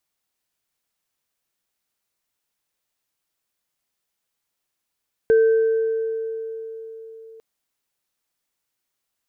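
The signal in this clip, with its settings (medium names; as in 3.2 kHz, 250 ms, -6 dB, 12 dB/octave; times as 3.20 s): sine partials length 2.10 s, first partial 448 Hz, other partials 1.55 kHz, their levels -17 dB, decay 4.18 s, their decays 2.05 s, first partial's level -11 dB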